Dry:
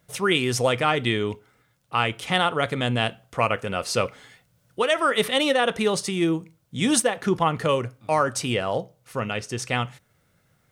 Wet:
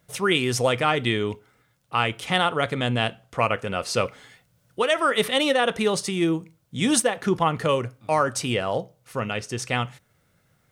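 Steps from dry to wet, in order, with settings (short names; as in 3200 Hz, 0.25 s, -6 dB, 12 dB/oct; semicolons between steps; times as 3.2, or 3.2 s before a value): 2.64–3.97 high shelf 11000 Hz -5.5 dB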